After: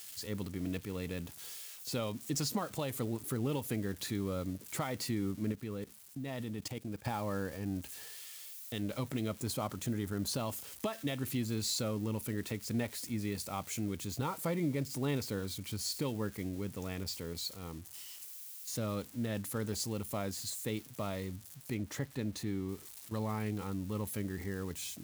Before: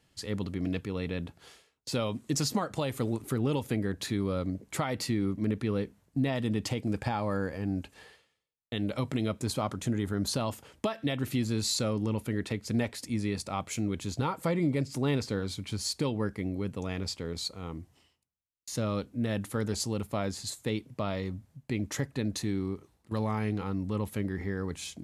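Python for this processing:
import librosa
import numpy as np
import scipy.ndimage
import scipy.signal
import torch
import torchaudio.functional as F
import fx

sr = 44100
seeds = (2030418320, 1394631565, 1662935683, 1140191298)

y = x + 0.5 * 10.0 ** (-33.5 / 20.0) * np.diff(np.sign(x), prepend=np.sign(x[:1]))
y = fx.level_steps(y, sr, step_db=17, at=(5.52, 7.05))
y = fx.high_shelf(y, sr, hz=4900.0, db=-7.0, at=(21.74, 22.69))
y = y * librosa.db_to_amplitude(-5.5)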